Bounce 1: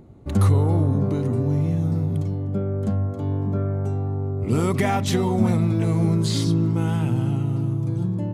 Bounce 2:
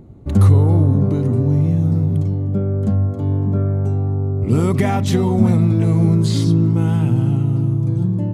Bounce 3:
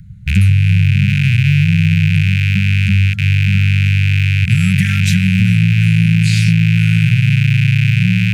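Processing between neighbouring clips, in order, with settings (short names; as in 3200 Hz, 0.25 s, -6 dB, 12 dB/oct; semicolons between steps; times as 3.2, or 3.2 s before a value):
low shelf 390 Hz +7 dB
rattling part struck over -23 dBFS, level -14 dBFS; Chebyshev band-stop 190–1500 Hz, order 5; compressor, threshold -15 dBFS, peak gain reduction 8 dB; gain +7.5 dB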